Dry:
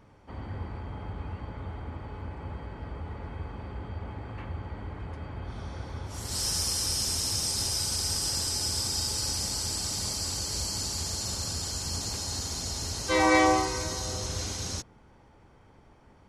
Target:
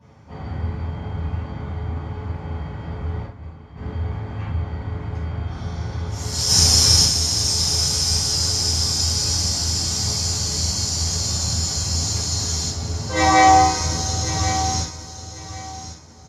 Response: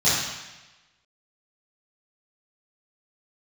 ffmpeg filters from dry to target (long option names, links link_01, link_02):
-filter_complex "[0:a]asettb=1/sr,asplit=3[link_01][link_02][link_03];[link_01]atrim=end=3.234[link_04];[link_02]atrim=start=3.23:end=3.76,asetpts=PTS-STARTPTS,afade=type=in:duration=0.004:curve=qsin,afade=type=out:start_time=0.526:duration=0.004:curve=qsin,agate=range=-33dB:threshold=-27dB:ratio=3:detection=peak[link_05];[link_03]atrim=start=3.756[link_06];[link_04][link_05]acrossfade=duration=0.004:curve1=hsin:curve2=qsin[link_07];[link_07][link_06]acrossfade=duration=0.004:curve1=qsin:curve2=hsin,asettb=1/sr,asplit=3[link_08][link_09][link_10];[link_08]atrim=end=6.484[link_11];[link_09]atrim=start=6.48:end=7.03,asetpts=PTS-STARTPTS,afade=type=in:duration=0.004:curve=qsin,afade=type=out:start_time=0.546:duration=0.004:curve=qsin,acontrast=45[link_12];[link_10]atrim=start=7.026[link_13];[link_11][link_12]acrossfade=duration=0.004:curve1=hsin:curve2=qsin[link_14];[link_14][link_13]acrossfade=duration=0.004:curve1=qsin:curve2=hsin,asplit=3[link_15][link_16][link_17];[link_15]afade=type=out:start_time=12.67:duration=0.02[link_18];[link_16]lowpass=frequency=1400:poles=1,afade=type=in:start_time=12.67:duration=0.02,afade=type=out:start_time=13.14:duration=0.02[link_19];[link_17]afade=type=in:start_time=13.14:duration=0.02[link_20];[link_18][link_19][link_20]amix=inputs=3:normalize=0,aecho=1:1:1093|2186|3279:0.237|0.0545|0.0125[link_21];[1:a]atrim=start_sample=2205,afade=type=out:start_time=0.15:duration=0.01,atrim=end_sample=7056[link_22];[link_21][link_22]afir=irnorm=-1:irlink=0,volume=-9.5dB"